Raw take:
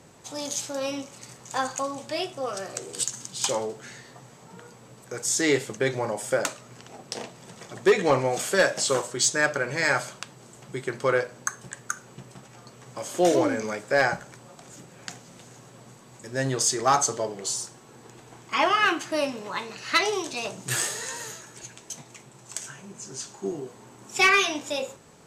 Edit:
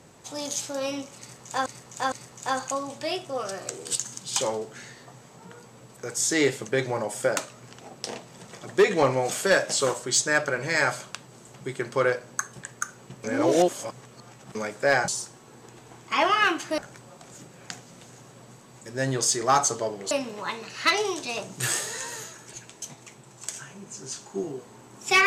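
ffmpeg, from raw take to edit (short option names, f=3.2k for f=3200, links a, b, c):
-filter_complex "[0:a]asplit=8[a][b][c][d][e][f][g][h];[a]atrim=end=1.662[i];[b]atrim=start=1.198:end=1.662[j];[c]atrim=start=1.198:end=12.322[k];[d]atrim=start=12.318:end=13.632,asetpts=PTS-STARTPTS,areverse[l];[e]atrim=start=13.628:end=14.162[m];[f]atrim=start=17.488:end=19.192[n];[g]atrim=start=14.158:end=17.492[o];[h]atrim=start=19.188[p];[i][j]acrossfade=d=0.004:c1=hsin:c2=hsin[q];[q][k]acrossfade=d=0.004:c1=hsin:c2=hsin[r];[r][l]acrossfade=d=0.004:c1=hsin:c2=hsin[s];[s][m]acrossfade=d=0.004:c1=hsin:c2=hsin[t];[t][n]acrossfade=d=0.004:c1=hsin:c2=hsin[u];[u][o]acrossfade=d=0.004:c1=hsin:c2=hsin[v];[v][p]acrossfade=d=0.004:c1=hsin:c2=hsin"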